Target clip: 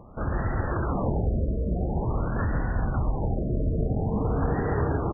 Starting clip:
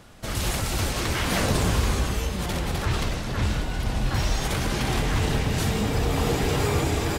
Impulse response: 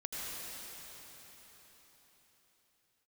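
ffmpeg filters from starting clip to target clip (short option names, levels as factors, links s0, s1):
-filter_complex "[0:a]equalizer=f=4300:t=o:w=0.35:g=9,acompressor=threshold=0.0631:ratio=6,atempo=1.4,asplit=2[s0][s1];[1:a]atrim=start_sample=2205,afade=t=out:st=0.43:d=0.01,atrim=end_sample=19404[s2];[s1][s2]afir=irnorm=-1:irlink=0,volume=0.631[s3];[s0][s3]amix=inputs=2:normalize=0,afftfilt=real='re*lt(b*sr/1024,660*pow(2000/660,0.5+0.5*sin(2*PI*0.48*pts/sr)))':imag='im*lt(b*sr/1024,660*pow(2000/660,0.5+0.5*sin(2*PI*0.48*pts/sr)))':win_size=1024:overlap=0.75"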